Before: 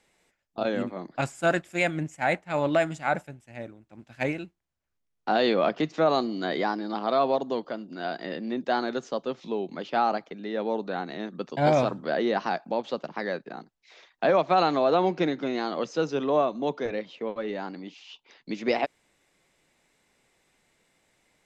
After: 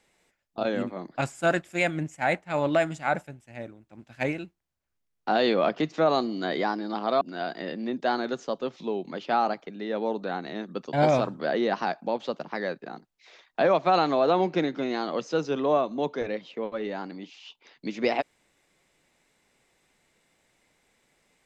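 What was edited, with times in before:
7.21–7.85 cut

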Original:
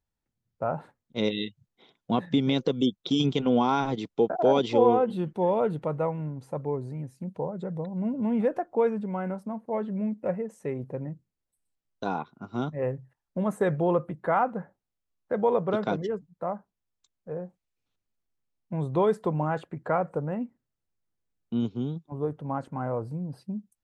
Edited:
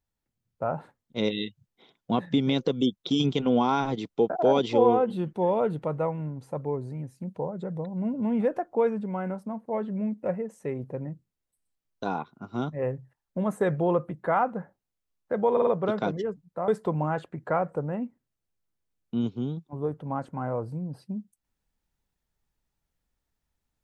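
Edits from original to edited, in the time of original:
15.52 stutter 0.05 s, 4 plays
16.53–19.07 cut

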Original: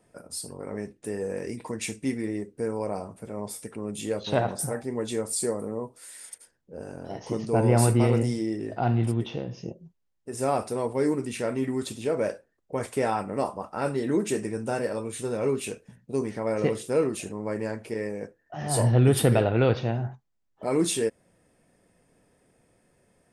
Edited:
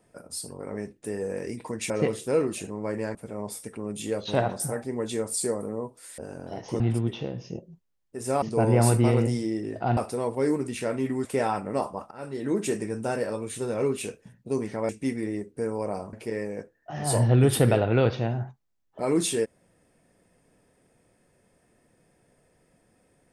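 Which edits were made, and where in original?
1.9–3.14 swap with 16.52–17.77
6.17–6.76 cut
7.38–8.93 move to 10.55
11.83–12.88 cut
13.74–14.26 fade in, from -19.5 dB

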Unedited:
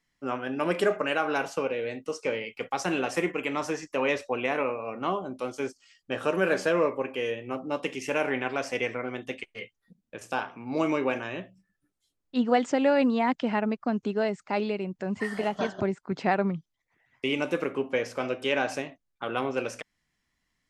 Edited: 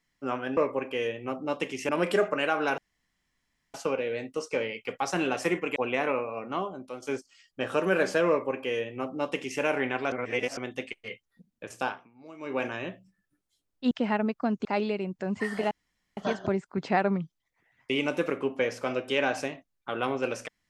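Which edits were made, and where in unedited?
1.46 insert room tone 0.96 s
3.48–4.27 cut
4.77–5.53 fade out, to -8 dB
6.8–8.12 copy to 0.57
8.63–9.08 reverse
10.35–11.16 dip -20.5 dB, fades 0.26 s
12.42–13.34 cut
14.08–14.45 cut
15.51 insert room tone 0.46 s

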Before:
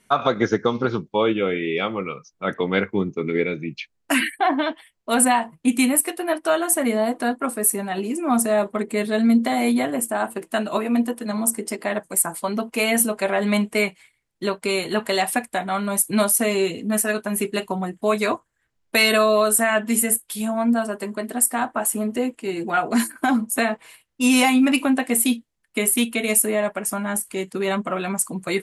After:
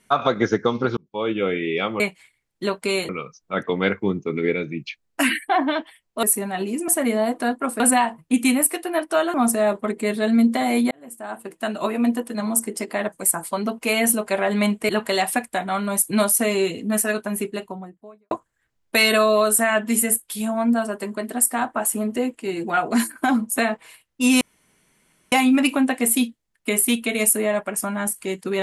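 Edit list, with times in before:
0.97–1.45 fade in
5.14–6.68 swap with 7.6–8.25
9.82–10.86 fade in
13.8–14.89 move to 2
17.06–18.31 studio fade out
24.41 insert room tone 0.91 s

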